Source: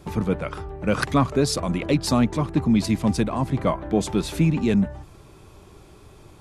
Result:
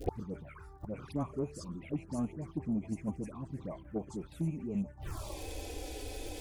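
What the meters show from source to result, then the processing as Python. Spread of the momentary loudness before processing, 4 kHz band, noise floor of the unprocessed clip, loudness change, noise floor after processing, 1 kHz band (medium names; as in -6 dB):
6 LU, -19.0 dB, -49 dBFS, -17.0 dB, -53 dBFS, -18.5 dB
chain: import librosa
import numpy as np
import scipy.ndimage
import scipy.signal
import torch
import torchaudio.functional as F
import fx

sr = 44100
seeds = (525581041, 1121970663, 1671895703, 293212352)

p1 = fx.low_shelf(x, sr, hz=87.0, db=-4.0)
p2 = fx.dispersion(p1, sr, late='highs', ms=92.0, hz=1400.0)
p3 = fx.env_flanger(p2, sr, rest_ms=4.4, full_db=-17.0)
p4 = fx.level_steps(p3, sr, step_db=19)
p5 = p3 + (p4 * librosa.db_to_amplitude(-1.0))
p6 = 10.0 ** (-7.0 / 20.0) * np.tanh(p5 / 10.0 ** (-7.0 / 20.0))
p7 = fx.dmg_crackle(p6, sr, seeds[0], per_s=180.0, level_db=-47.0)
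p8 = fx.dynamic_eq(p7, sr, hz=4500.0, q=1.0, threshold_db=-45.0, ratio=4.0, max_db=-6)
p9 = fx.env_phaser(p8, sr, low_hz=170.0, high_hz=3700.0, full_db=-19.0)
p10 = fx.gate_flip(p9, sr, shuts_db=-28.0, range_db=-27)
y = p10 * librosa.db_to_amplitude(10.0)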